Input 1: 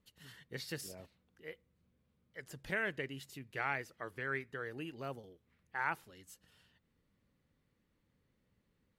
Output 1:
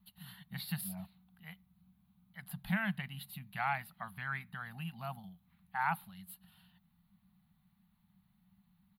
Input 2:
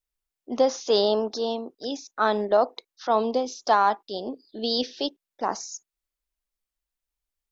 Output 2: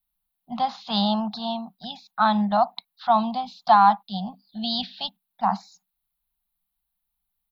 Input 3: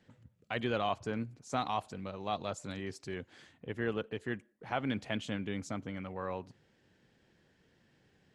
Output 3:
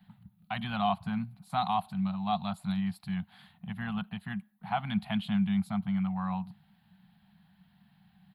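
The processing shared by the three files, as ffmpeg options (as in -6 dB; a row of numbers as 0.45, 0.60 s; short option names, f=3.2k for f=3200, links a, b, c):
-af "firequalizer=gain_entry='entry(130,0);entry(190,15);entry(300,-27);entry(490,-29);entry(720,5);entry(1800,-4);entry(4100,3);entry(6000,-25);entry(11000,9)':delay=0.05:min_phase=1,volume=2dB"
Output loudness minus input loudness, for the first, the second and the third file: +2.0, +2.0, +5.0 LU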